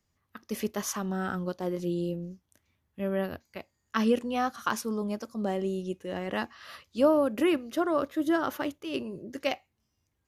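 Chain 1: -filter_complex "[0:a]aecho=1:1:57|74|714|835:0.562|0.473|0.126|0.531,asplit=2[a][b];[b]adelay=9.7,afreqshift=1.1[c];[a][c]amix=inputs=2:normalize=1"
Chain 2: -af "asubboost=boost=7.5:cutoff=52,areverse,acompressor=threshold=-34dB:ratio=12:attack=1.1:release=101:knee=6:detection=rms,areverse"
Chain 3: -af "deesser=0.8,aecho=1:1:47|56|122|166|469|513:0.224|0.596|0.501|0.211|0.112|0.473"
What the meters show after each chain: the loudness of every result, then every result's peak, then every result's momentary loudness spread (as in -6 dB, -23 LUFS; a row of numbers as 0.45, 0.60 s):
-30.5, -41.5, -28.0 LUFS; -12.0, -28.5, -10.5 dBFS; 14, 8, 14 LU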